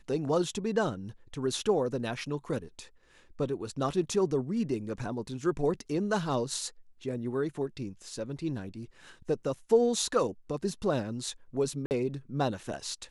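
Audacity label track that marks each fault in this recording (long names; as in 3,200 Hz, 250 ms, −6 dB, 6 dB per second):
11.860000	11.910000	drop-out 49 ms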